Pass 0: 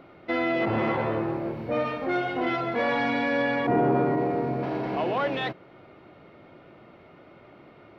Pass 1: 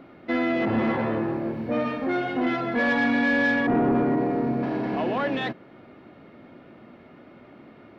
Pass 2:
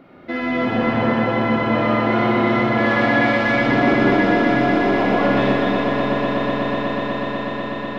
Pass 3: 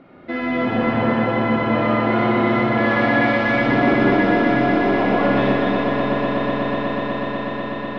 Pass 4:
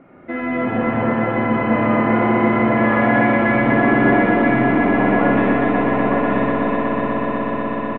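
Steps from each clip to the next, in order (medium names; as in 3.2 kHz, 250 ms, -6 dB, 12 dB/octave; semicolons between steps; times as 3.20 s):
small resonant body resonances 240/1700 Hz, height 10 dB, ringing for 45 ms; saturation -15 dBFS, distortion -18 dB
echo with a slow build-up 123 ms, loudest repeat 8, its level -9 dB; Schroeder reverb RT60 3.4 s, combs from 31 ms, DRR -4.5 dB
distance through air 95 m
low-pass 2.5 kHz 24 dB/octave; delay 925 ms -4 dB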